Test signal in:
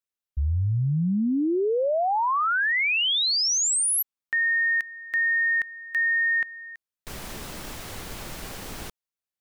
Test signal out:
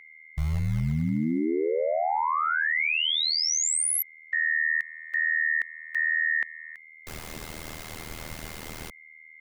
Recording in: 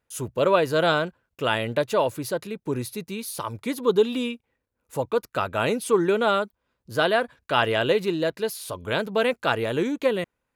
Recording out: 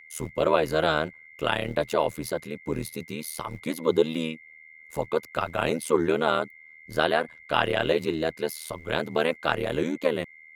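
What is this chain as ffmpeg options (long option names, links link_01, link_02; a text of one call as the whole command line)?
ffmpeg -i in.wav -filter_complex "[0:a]aeval=exprs='val(0)+0.00562*sin(2*PI*2100*n/s)':channel_layout=same,acrossover=split=130[link_01][link_02];[link_01]acrusher=bits=4:mode=log:mix=0:aa=0.000001[link_03];[link_03][link_02]amix=inputs=2:normalize=0,tremolo=f=79:d=0.919,volume=1.5dB" out.wav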